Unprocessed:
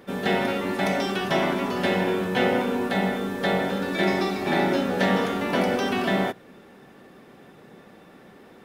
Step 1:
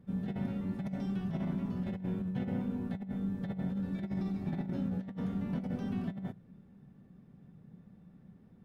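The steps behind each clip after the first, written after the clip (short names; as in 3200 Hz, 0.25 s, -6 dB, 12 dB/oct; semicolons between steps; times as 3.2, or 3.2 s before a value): EQ curve 180 Hz 0 dB, 340 Hz -20 dB, 2700 Hz -27 dB; negative-ratio compressor -33 dBFS, ratio -0.5; gain -1 dB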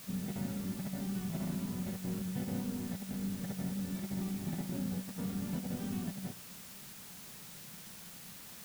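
requantised 8-bit, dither triangular; gain -2.5 dB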